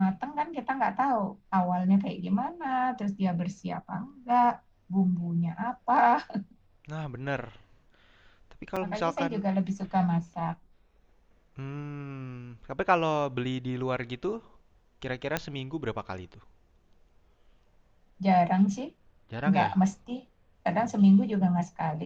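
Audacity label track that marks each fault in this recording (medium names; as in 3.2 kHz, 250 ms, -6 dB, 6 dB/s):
8.760000	8.770000	dropout 5.1 ms
15.370000	15.370000	pop -12 dBFS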